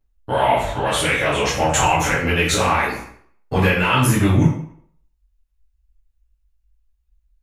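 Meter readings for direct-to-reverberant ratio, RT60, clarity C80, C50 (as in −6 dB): −11.0 dB, 0.60 s, 6.5 dB, 3.0 dB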